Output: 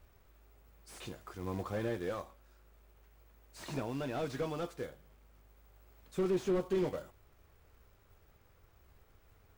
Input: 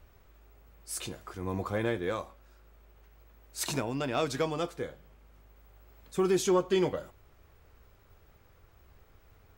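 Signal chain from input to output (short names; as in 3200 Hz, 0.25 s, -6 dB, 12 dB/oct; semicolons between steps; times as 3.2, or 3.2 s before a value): short-mantissa float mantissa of 2-bit; slew limiter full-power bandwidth 28 Hz; gain -4.5 dB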